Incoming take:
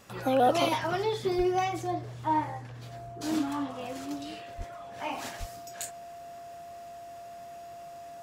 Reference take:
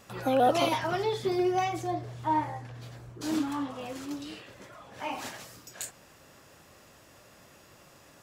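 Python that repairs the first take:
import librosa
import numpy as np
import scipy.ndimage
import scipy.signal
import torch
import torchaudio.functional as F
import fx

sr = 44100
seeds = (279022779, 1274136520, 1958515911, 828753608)

y = fx.notch(x, sr, hz=690.0, q=30.0)
y = fx.highpass(y, sr, hz=140.0, slope=24, at=(1.37, 1.49), fade=0.02)
y = fx.highpass(y, sr, hz=140.0, slope=24, at=(4.57, 4.69), fade=0.02)
y = fx.highpass(y, sr, hz=140.0, slope=24, at=(5.39, 5.51), fade=0.02)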